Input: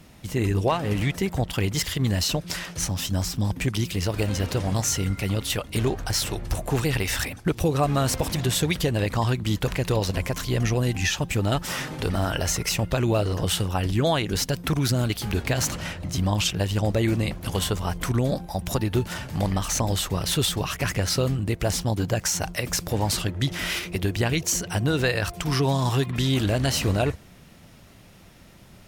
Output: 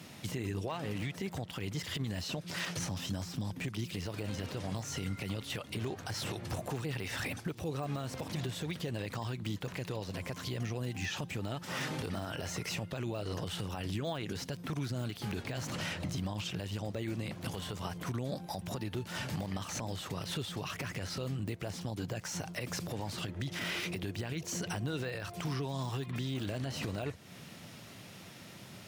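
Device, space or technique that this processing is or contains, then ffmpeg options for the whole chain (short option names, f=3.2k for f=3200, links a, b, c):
broadcast voice chain: -af "highpass=f=97:w=0.5412,highpass=f=97:w=1.3066,deesser=0.85,acompressor=threshold=-34dB:ratio=4,equalizer=f=4k:t=o:w=2.2:g=4,alimiter=level_in=2.5dB:limit=-24dB:level=0:latency=1:release=40,volume=-2.5dB"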